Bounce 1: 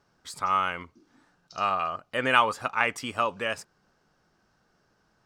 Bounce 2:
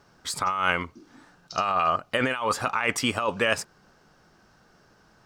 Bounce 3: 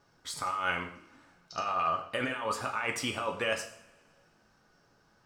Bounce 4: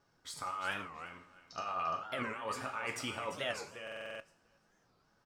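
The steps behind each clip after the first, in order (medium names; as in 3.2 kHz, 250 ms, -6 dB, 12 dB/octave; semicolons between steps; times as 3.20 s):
compressor with a negative ratio -30 dBFS, ratio -1; trim +5.5 dB
two-slope reverb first 0.52 s, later 2 s, from -22 dB, DRR 3 dB; trim -9 dB
feedback delay 345 ms, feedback 18%, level -10 dB; buffer glitch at 3.83 s, samples 2048, times 7; warped record 45 rpm, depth 250 cents; trim -6.5 dB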